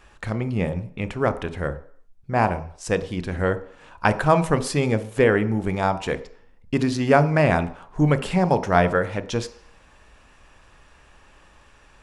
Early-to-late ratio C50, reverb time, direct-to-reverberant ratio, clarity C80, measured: 15.5 dB, 0.55 s, 11.0 dB, 18.0 dB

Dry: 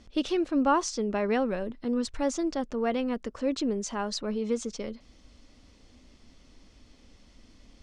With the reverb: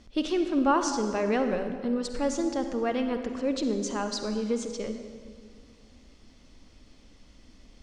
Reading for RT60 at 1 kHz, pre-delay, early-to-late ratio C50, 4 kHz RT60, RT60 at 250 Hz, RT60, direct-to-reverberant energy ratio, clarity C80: 1.7 s, 40 ms, 7.0 dB, 1.4 s, 2.3 s, 1.9 s, 6.5 dB, 8.0 dB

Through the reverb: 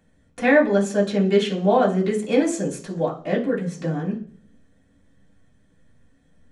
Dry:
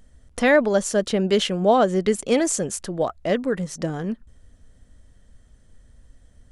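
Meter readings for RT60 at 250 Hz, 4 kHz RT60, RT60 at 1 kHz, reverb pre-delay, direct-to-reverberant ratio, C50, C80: 0.65 s, 0.55 s, 0.40 s, 3 ms, -7.5 dB, 11.0 dB, 16.0 dB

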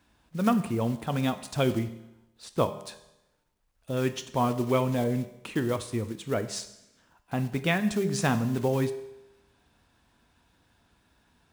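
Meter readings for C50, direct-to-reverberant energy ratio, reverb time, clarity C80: 13.0 dB, 9.5 dB, 0.90 s, 15.0 dB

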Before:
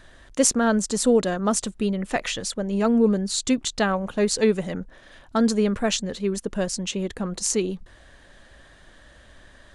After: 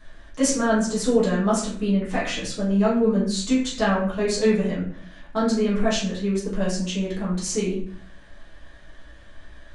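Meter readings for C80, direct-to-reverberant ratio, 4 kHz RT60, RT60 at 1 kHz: 8.0 dB, -9.0 dB, 0.40 s, 0.50 s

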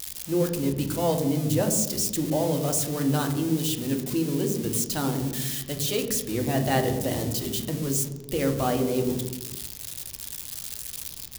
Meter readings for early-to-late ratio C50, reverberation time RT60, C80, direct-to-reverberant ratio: 8.5 dB, 1.1 s, 10.0 dB, 4.0 dB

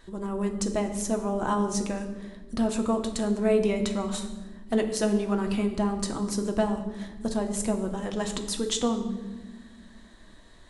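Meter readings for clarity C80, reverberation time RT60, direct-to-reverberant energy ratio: 11.0 dB, 1.3 s, 4.0 dB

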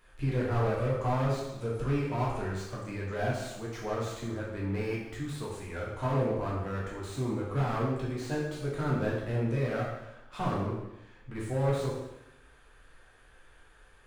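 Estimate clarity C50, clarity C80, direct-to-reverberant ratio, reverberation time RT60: 1.5 dB, 4.5 dB, -6.0 dB, 0.90 s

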